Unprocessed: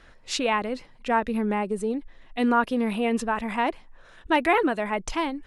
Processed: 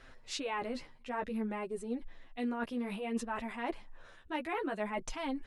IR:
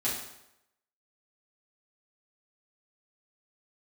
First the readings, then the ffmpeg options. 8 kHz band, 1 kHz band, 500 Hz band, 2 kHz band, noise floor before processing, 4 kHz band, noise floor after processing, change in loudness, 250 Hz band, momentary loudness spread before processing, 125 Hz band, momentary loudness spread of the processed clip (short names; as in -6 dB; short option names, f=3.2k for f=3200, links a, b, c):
-9.5 dB, -14.0 dB, -12.0 dB, -13.5 dB, -52 dBFS, -11.0 dB, -57 dBFS, -12.5 dB, -11.0 dB, 9 LU, n/a, 6 LU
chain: -af "areverse,acompressor=threshold=-31dB:ratio=6,areverse,flanger=delay=7.5:depth=5.6:regen=2:speed=0.58:shape=sinusoidal"